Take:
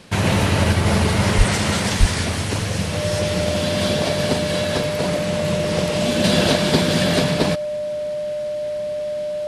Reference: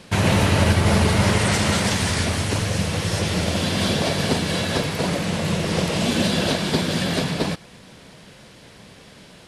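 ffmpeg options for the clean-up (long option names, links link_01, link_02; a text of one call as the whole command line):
ffmpeg -i in.wav -filter_complex "[0:a]bandreject=frequency=600:width=30,asplit=3[link_01][link_02][link_03];[link_01]afade=type=out:start_time=1.37:duration=0.02[link_04];[link_02]highpass=frequency=140:width=0.5412,highpass=frequency=140:width=1.3066,afade=type=in:start_time=1.37:duration=0.02,afade=type=out:start_time=1.49:duration=0.02[link_05];[link_03]afade=type=in:start_time=1.49:duration=0.02[link_06];[link_04][link_05][link_06]amix=inputs=3:normalize=0,asplit=3[link_07][link_08][link_09];[link_07]afade=type=out:start_time=1.99:duration=0.02[link_10];[link_08]highpass=frequency=140:width=0.5412,highpass=frequency=140:width=1.3066,afade=type=in:start_time=1.99:duration=0.02,afade=type=out:start_time=2.11:duration=0.02[link_11];[link_09]afade=type=in:start_time=2.11:duration=0.02[link_12];[link_10][link_11][link_12]amix=inputs=3:normalize=0,asetnsamples=nb_out_samples=441:pad=0,asendcmd='6.24 volume volume -4dB',volume=0dB" out.wav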